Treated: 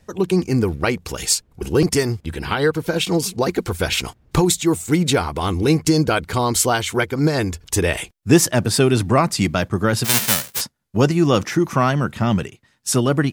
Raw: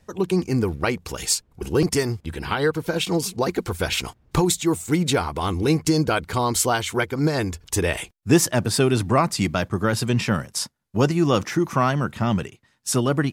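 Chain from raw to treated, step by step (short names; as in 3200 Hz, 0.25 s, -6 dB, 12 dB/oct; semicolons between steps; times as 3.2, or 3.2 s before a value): 10.04–10.6 spectral whitening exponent 0.1; bell 1000 Hz -2 dB; gain +3.5 dB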